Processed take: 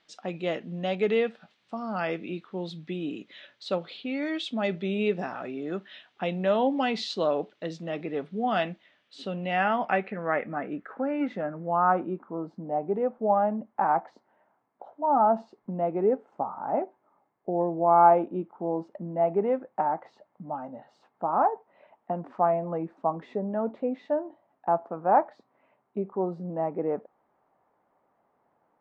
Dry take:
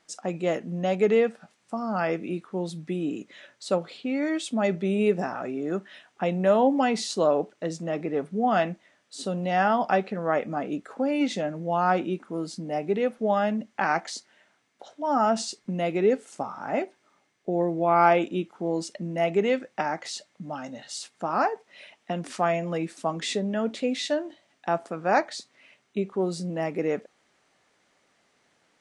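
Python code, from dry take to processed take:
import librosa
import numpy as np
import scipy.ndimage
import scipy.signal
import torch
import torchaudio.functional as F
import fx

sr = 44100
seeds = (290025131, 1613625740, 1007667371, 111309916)

y = fx.filter_sweep_lowpass(x, sr, from_hz=3600.0, to_hz=920.0, start_s=8.68, end_s=12.57, q=2.4)
y = y * librosa.db_to_amplitude(-4.0)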